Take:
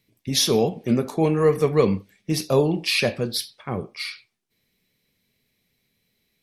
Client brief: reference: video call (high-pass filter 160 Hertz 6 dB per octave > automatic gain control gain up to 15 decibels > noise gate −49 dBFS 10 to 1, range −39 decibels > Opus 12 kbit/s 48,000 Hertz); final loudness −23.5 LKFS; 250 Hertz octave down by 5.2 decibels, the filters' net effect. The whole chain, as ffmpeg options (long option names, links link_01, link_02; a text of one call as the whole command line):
ffmpeg -i in.wav -af "highpass=frequency=160:poles=1,equalizer=frequency=250:width_type=o:gain=-5,dynaudnorm=maxgain=15dB,agate=range=-39dB:threshold=-49dB:ratio=10,volume=1dB" -ar 48000 -c:a libopus -b:a 12k out.opus